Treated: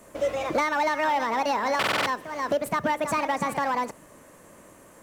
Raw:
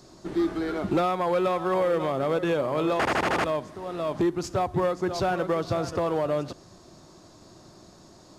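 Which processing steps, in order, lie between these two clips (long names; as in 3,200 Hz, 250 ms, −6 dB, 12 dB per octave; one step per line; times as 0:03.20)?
change of speed 1.67×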